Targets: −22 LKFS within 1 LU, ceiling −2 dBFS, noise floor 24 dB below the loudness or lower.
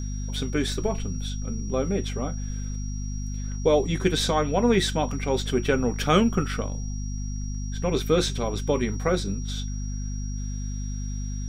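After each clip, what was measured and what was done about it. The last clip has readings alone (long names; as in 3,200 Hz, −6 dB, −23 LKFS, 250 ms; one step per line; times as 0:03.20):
mains hum 50 Hz; hum harmonics up to 250 Hz; level of the hum −28 dBFS; interfering tone 5,700 Hz; level of the tone −43 dBFS; integrated loudness −27.0 LKFS; sample peak −7.0 dBFS; target loudness −22.0 LKFS
→ mains-hum notches 50/100/150/200/250 Hz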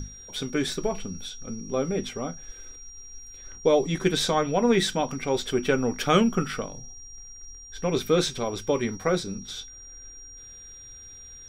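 mains hum none found; interfering tone 5,700 Hz; level of the tone −43 dBFS
→ notch filter 5,700 Hz, Q 30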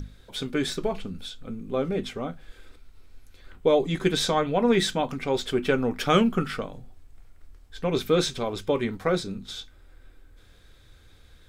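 interfering tone none found; integrated loudness −26.0 LKFS; sample peak −8.5 dBFS; target loudness −22.0 LKFS
→ level +4 dB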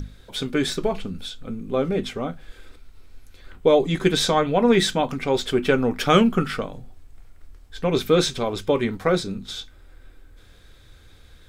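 integrated loudness −22.0 LKFS; sample peak −4.5 dBFS; background noise floor −50 dBFS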